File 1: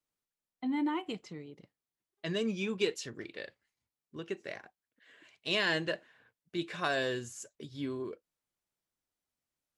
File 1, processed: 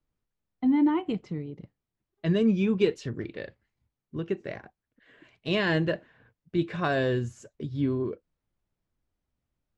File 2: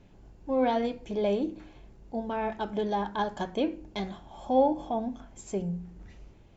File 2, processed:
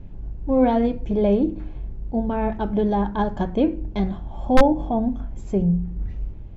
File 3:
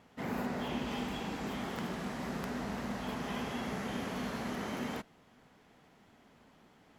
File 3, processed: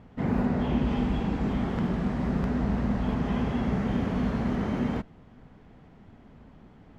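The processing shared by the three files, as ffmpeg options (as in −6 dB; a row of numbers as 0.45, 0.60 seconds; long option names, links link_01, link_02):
-af "aeval=exprs='(mod(5.31*val(0)+1,2)-1)/5.31':channel_layout=same,aemphasis=mode=reproduction:type=riaa,volume=4dB"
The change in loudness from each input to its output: +7.5, +8.0, +10.0 LU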